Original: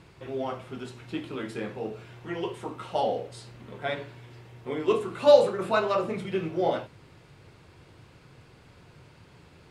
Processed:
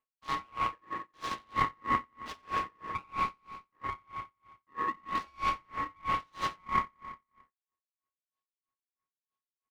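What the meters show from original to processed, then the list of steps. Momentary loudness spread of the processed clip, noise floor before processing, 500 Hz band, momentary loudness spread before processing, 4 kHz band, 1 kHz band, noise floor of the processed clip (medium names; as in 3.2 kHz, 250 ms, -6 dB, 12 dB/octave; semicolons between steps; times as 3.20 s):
13 LU, -55 dBFS, -24.5 dB, 20 LU, -6.5 dB, +1.5 dB, under -85 dBFS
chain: spectral levelling over time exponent 0.6; gate -30 dBFS, range -48 dB; high-pass 110 Hz 24 dB/octave; treble shelf 2.6 kHz +11.5 dB; gain riding within 5 dB 0.5 s; LFO low-pass sine 0.99 Hz 330–2500 Hz; full-wave rectifier; ring modulator 1.1 kHz; feedback delay 89 ms, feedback 59%, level -4 dB; logarithmic tremolo 3.1 Hz, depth 37 dB; trim -6 dB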